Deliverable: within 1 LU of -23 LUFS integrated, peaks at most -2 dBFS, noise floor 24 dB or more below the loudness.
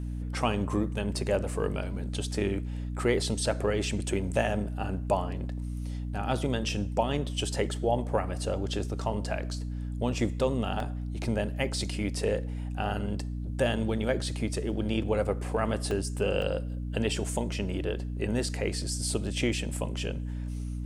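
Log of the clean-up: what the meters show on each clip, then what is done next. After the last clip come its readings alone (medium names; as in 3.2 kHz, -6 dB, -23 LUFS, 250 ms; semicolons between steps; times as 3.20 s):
dropouts 3; longest dropout 2.1 ms; hum 60 Hz; highest harmonic 300 Hz; hum level -31 dBFS; loudness -31.0 LUFS; peak level -12.0 dBFS; loudness target -23.0 LUFS
-> interpolate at 10.80/15.91/16.42 s, 2.1 ms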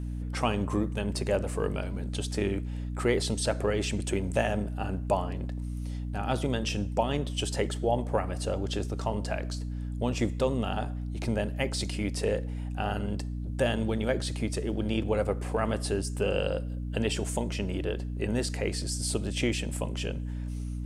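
dropouts 0; hum 60 Hz; highest harmonic 300 Hz; hum level -31 dBFS
-> de-hum 60 Hz, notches 5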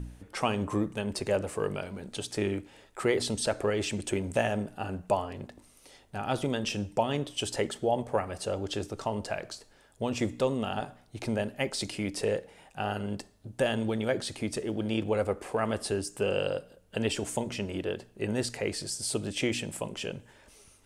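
hum not found; loudness -32.0 LUFS; peak level -13.0 dBFS; loudness target -23.0 LUFS
-> trim +9 dB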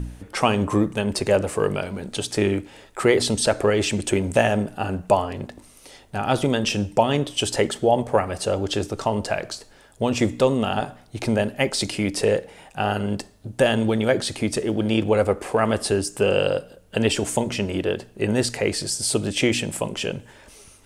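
loudness -23.0 LUFS; peak level -4.0 dBFS; noise floor -51 dBFS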